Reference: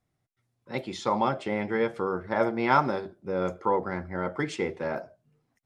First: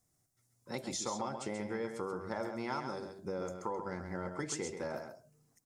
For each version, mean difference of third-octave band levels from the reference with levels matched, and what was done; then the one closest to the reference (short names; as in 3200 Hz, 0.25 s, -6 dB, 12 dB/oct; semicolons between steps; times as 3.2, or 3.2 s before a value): 6.5 dB: resonant high shelf 4600 Hz +13 dB, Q 1.5; compressor 5:1, threshold -34 dBFS, peak gain reduction 16 dB; echo 0.133 s -7 dB; gain -2 dB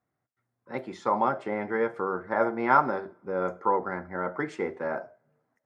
3.5 dB: HPF 240 Hz 6 dB/oct; resonant high shelf 2200 Hz -9.5 dB, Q 1.5; two-slope reverb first 0.35 s, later 1.7 s, from -25 dB, DRR 16 dB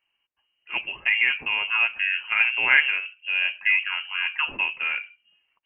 16.5 dB: HPF 110 Hz; dynamic EQ 2200 Hz, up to -4 dB, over -48 dBFS, Q 6; inverted band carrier 3000 Hz; gain +4 dB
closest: second